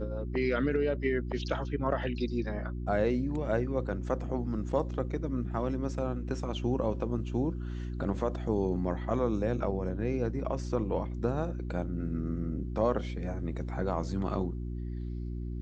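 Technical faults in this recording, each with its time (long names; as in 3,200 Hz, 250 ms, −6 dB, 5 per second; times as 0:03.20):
mains hum 60 Hz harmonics 6 −36 dBFS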